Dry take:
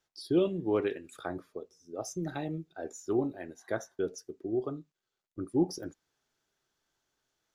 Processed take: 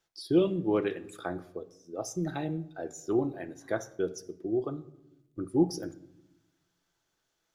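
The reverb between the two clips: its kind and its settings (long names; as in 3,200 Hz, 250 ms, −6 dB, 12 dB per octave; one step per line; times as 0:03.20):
rectangular room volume 2,900 cubic metres, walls furnished, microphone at 0.72 metres
level +1.5 dB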